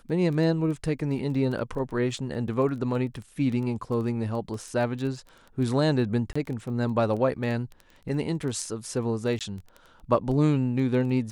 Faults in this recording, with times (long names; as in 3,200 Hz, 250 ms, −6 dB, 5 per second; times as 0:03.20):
surface crackle 11 per second −33 dBFS
0:06.33–0:06.36: drop-out 25 ms
0:09.39–0:09.41: drop-out 17 ms